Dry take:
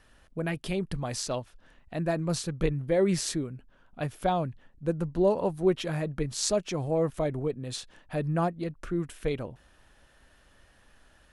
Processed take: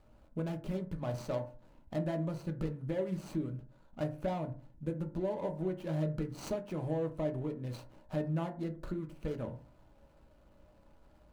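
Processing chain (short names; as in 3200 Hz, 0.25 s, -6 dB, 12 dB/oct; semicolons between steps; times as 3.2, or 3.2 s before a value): median filter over 25 samples; compressor 5:1, threshold -34 dBFS, peak gain reduction 14 dB; reverb RT60 0.40 s, pre-delay 3 ms, DRR 4 dB; gain -1 dB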